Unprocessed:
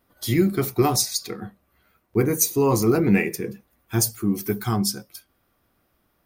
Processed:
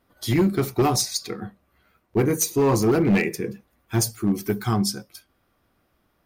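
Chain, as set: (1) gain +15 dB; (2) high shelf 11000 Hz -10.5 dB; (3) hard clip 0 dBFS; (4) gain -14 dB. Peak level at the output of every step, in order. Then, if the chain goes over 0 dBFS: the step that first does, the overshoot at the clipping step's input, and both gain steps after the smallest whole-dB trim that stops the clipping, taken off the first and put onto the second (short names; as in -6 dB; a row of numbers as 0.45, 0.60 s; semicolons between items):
+9.5, +8.0, 0.0, -14.0 dBFS; step 1, 8.0 dB; step 1 +7 dB, step 4 -6 dB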